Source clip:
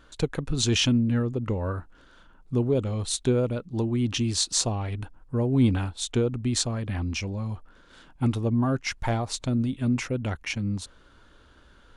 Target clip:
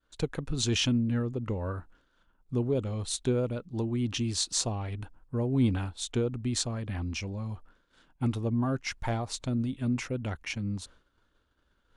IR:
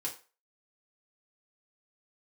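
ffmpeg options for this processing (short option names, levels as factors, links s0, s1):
-af "agate=range=0.0224:threshold=0.00562:ratio=3:detection=peak,volume=0.596"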